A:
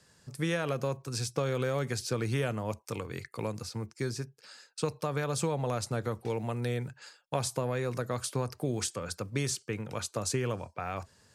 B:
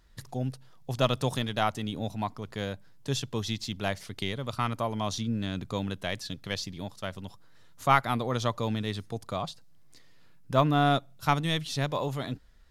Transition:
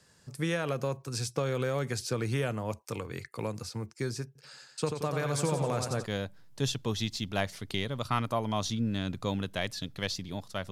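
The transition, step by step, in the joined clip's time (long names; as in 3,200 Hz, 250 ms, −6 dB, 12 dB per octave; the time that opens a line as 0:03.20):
A
0:04.26–0:06.06: feedback echo with a swinging delay time 89 ms, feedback 55%, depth 66 cents, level −6 dB
0:06.03: continue with B from 0:02.51, crossfade 0.06 s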